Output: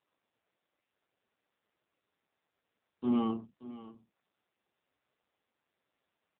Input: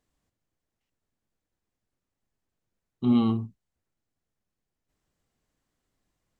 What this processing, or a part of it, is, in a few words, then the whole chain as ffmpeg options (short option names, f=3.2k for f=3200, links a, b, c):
satellite phone: -af "adynamicequalizer=threshold=0.0141:dfrequency=150:dqfactor=1.5:tfrequency=150:tqfactor=1.5:attack=5:release=100:ratio=0.375:range=2:mode=boostabove:tftype=bell,highpass=380,lowpass=3.1k,aecho=1:1:579:0.168" -ar 8000 -c:a libopencore_amrnb -b:a 5900